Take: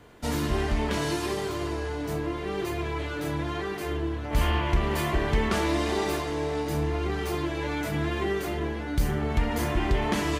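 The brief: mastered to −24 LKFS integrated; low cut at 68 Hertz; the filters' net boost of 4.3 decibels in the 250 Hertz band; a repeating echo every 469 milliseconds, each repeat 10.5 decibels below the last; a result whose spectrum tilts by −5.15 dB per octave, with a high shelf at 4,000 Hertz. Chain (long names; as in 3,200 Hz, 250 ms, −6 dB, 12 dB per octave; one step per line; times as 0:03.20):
high-pass filter 68 Hz
parametric band 250 Hz +6 dB
high-shelf EQ 4,000 Hz +6 dB
repeating echo 469 ms, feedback 30%, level −10.5 dB
level +2.5 dB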